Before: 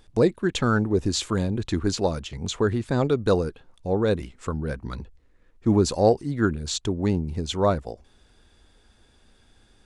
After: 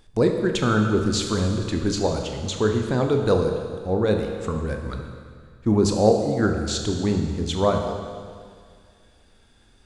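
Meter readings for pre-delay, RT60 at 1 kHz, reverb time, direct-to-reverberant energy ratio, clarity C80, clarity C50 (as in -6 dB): 24 ms, 2.0 s, 2.0 s, 3.5 dB, 6.0 dB, 5.0 dB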